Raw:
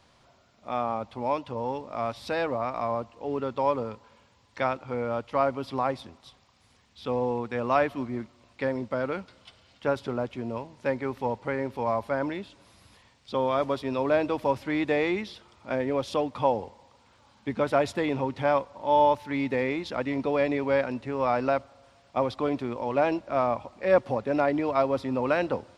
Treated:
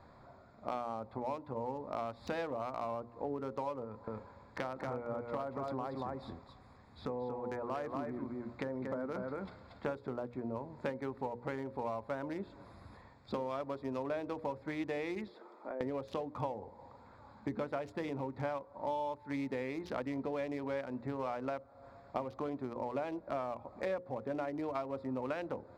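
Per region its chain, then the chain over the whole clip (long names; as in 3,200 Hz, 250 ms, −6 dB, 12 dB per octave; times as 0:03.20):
0:03.84–0:09.86: downward compressor 2 to 1, threshold −37 dBFS + single-tap delay 233 ms −4 dB
0:15.28–0:15.81: high-pass filter 320 Hz 24 dB per octave + downward compressor 8 to 1, threshold −41 dBFS + tilt shelving filter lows +4.5 dB, about 670 Hz
whole clip: adaptive Wiener filter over 15 samples; downward compressor 12 to 1, threshold −39 dBFS; mains-hum notches 60/120/180/240/300/360/420/480/540 Hz; level +5 dB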